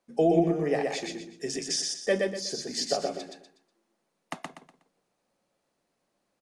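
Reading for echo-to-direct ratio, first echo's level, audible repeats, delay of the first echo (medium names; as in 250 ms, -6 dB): -2.5 dB, -3.0 dB, 4, 122 ms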